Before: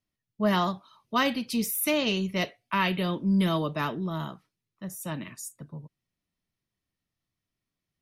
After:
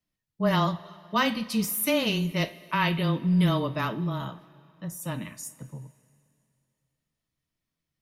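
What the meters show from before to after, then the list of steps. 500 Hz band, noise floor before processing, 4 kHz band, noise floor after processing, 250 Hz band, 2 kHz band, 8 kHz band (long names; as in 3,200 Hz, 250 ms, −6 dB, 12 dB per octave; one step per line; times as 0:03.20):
+0.5 dB, below −85 dBFS, +0.5 dB, below −85 dBFS, +0.5 dB, +0.5 dB, +0.5 dB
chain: coupled-rooms reverb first 0.23 s, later 2.6 s, from −19 dB, DRR 9 dB
frequency shifter −15 Hz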